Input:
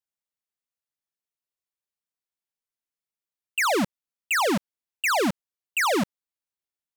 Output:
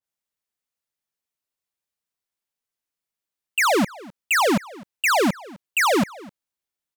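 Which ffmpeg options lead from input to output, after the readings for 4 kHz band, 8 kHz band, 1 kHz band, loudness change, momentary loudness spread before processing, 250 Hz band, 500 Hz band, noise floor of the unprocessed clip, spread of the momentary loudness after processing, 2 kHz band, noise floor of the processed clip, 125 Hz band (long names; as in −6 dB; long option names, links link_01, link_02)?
+3.5 dB, +3.5 dB, +4.0 dB, +4.0 dB, 9 LU, +4.0 dB, +4.0 dB, below −85 dBFS, 9 LU, +4.0 dB, below −85 dBFS, +4.0 dB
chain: -filter_complex "[0:a]asplit=2[link_01][link_02];[link_02]adelay=256.6,volume=-21dB,highshelf=frequency=4000:gain=-5.77[link_03];[link_01][link_03]amix=inputs=2:normalize=0,adynamicequalizer=threshold=0.0158:dfrequency=1900:dqfactor=0.7:tfrequency=1900:tqfactor=0.7:attack=5:release=100:ratio=0.375:range=2:mode=cutabove:tftype=highshelf,volume=4dB"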